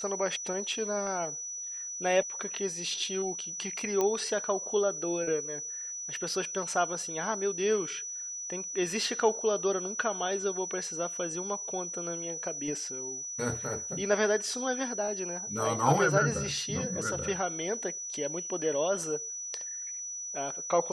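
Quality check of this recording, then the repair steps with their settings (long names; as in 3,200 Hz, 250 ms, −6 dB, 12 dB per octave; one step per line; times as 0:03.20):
whistle 5,900 Hz −36 dBFS
0:04.01: click −15 dBFS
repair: click removal
notch filter 5,900 Hz, Q 30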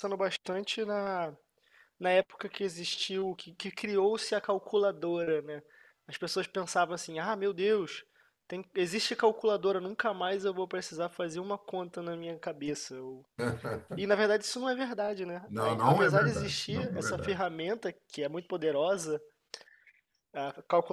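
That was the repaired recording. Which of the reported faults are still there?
none of them is left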